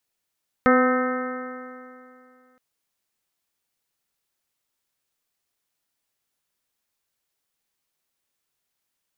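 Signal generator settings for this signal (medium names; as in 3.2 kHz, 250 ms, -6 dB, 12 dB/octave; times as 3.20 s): stretched partials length 1.92 s, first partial 252 Hz, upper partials 0/-8/-14/-1.5/-8/-8/-14 dB, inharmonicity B 0.0013, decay 2.52 s, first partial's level -17 dB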